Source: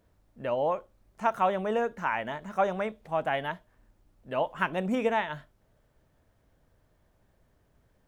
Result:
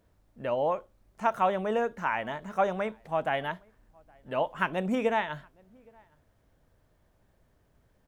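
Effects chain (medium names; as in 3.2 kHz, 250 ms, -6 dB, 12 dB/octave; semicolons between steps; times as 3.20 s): echo from a far wall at 140 m, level -29 dB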